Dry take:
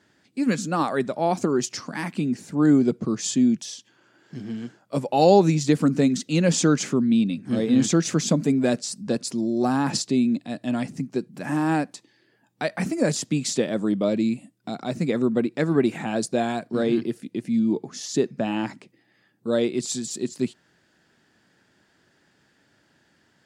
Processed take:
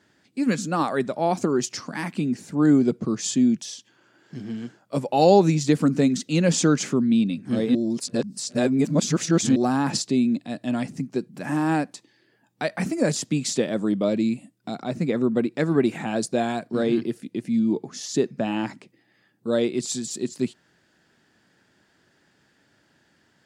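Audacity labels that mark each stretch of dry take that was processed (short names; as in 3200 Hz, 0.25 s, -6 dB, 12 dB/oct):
7.750000	9.560000	reverse
14.820000	15.360000	high shelf 3900 Hz -6 dB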